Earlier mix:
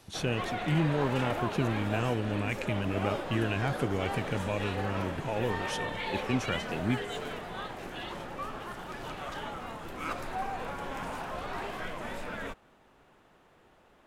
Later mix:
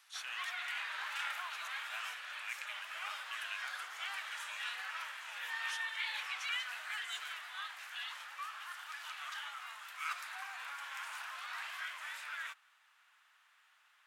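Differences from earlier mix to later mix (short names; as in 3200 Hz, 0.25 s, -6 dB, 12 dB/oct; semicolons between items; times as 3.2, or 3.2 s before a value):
speech -6.5 dB; master: add HPF 1300 Hz 24 dB/oct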